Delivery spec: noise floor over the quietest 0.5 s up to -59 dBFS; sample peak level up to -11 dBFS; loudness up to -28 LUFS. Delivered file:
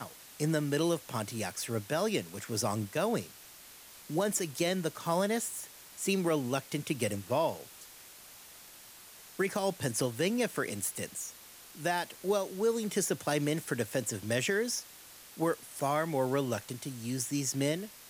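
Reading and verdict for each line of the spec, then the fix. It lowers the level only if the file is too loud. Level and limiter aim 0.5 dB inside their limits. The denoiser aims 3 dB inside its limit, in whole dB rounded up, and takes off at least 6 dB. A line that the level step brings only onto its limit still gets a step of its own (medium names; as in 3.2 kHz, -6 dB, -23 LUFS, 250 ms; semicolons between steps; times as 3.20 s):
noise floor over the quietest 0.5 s -53 dBFS: fail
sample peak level -18.0 dBFS: pass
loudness -32.5 LUFS: pass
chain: noise reduction 9 dB, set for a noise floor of -53 dBFS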